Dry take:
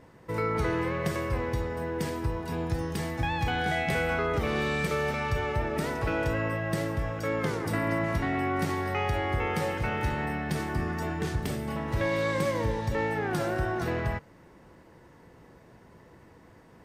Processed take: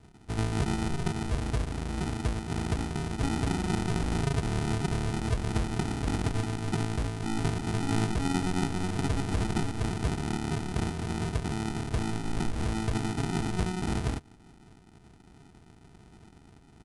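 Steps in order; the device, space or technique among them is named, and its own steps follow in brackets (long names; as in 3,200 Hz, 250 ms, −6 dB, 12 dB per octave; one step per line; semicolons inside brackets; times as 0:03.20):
crushed at another speed (tape speed factor 2×; decimation without filtering 40×; tape speed factor 0.5×)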